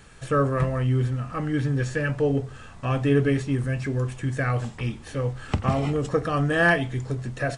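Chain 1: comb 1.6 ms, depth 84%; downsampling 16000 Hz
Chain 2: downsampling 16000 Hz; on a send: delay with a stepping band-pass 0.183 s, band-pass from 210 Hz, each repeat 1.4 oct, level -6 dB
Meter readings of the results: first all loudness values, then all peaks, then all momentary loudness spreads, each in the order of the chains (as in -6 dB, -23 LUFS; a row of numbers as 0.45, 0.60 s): -23.0, -25.0 LUFS; -6.5, -8.0 dBFS; 8, 8 LU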